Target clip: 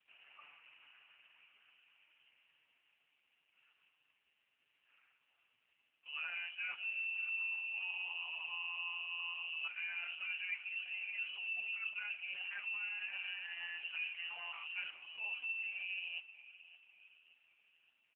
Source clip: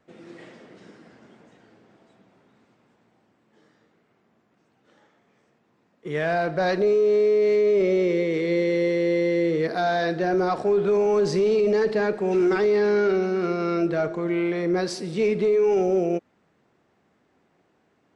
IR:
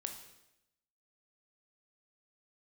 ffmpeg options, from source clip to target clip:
-af "aecho=1:1:6.7:0.48,areverse,acompressor=threshold=0.0355:ratio=5,areverse,aecho=1:1:571|1142|1713|2284:0.158|0.0729|0.0335|0.0154,lowpass=f=2600:t=q:w=0.5098,lowpass=f=2600:t=q:w=0.6013,lowpass=f=2600:t=q:w=0.9,lowpass=f=2600:t=q:w=2.563,afreqshift=-3100,volume=0.376" -ar 8000 -c:a libopencore_amrnb -b:a 4750

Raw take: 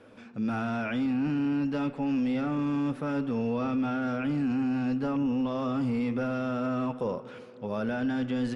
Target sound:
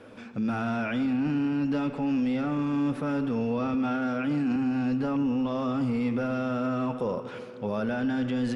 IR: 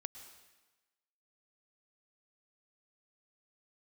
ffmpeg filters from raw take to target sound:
-filter_complex "[0:a]asettb=1/sr,asplit=3[s0][s1][s2];[s0]atrim=end=3.744[s3];[s1]atrim=start=3.74:end=4.56,asetpts=PTS-STARTPTS,afade=t=in:d=0.004:c=qsin,afade=t=out:st=0.816:d=0.004:c=qsin,highpass=140[s4];[s2]atrim=start=4.556[s5];[s3][s4]acrossfade=d=0.004:c1=hsin:c2=qsin[s6];[s6][s5]acrossfade=d=0.004:c1=qsin:c2=hsin,alimiter=level_in=1.33:limit=0.0631:level=0:latency=1:release=31,volume=0.75,asplit=2[s7][s8];[1:a]atrim=start_sample=2205[s9];[s8][s9]afir=irnorm=-1:irlink=0,volume=1.26[s10];[s7][s10]amix=inputs=2:normalize=0"

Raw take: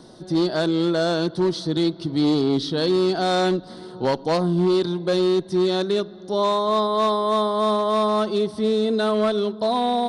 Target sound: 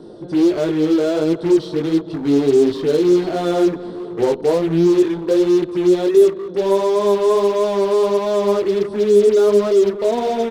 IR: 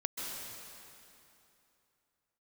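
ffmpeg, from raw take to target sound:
-filter_complex "[0:a]highshelf=f=2700:g=-9,flanger=delay=17:depth=4.1:speed=1.5,equalizer=f=430:t=o:w=0.77:g=14,asetrate=42336,aresample=44100,aecho=1:1:220|440|660:0.0891|0.0357|0.0143,asplit=2[s0][s1];[s1]aeval=exprs='0.0335*(abs(mod(val(0)/0.0335+3,4)-2)-1)':c=same,volume=0.668[s2];[s0][s2]amix=inputs=2:normalize=0"

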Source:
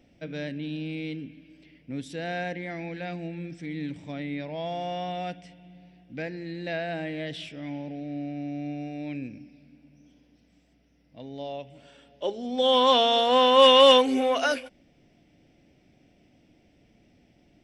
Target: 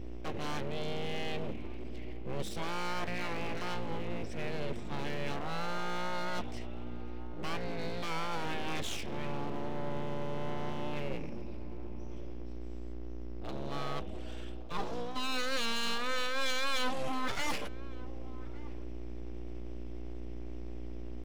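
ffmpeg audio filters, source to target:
-filter_complex "[0:a]atempo=0.83,aeval=exprs='val(0)+0.00891*(sin(2*PI*60*n/s)+sin(2*PI*2*60*n/s)/2+sin(2*PI*3*60*n/s)/3+sin(2*PI*4*60*n/s)/4+sin(2*PI*5*60*n/s)/5)':c=same,aeval=exprs='abs(val(0))':c=same,areverse,acompressor=threshold=0.0224:ratio=5,areverse,asplit=2[s0][s1];[s1]adelay=1166,volume=0.141,highshelf=f=4000:g=-26.2[s2];[s0][s2]amix=inputs=2:normalize=0,volume=1.5"

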